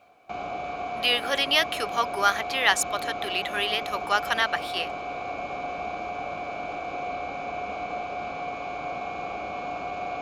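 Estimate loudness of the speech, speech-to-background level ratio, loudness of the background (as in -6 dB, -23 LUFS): -25.0 LUFS, 8.0 dB, -33.0 LUFS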